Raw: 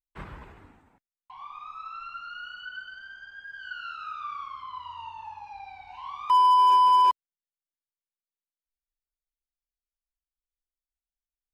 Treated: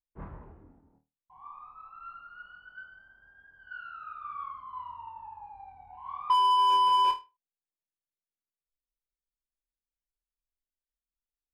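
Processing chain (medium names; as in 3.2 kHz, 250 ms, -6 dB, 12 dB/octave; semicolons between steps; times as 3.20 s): flutter echo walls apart 4.4 m, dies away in 0.26 s; level-controlled noise filter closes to 470 Hz, open at -22 dBFS; trim -2 dB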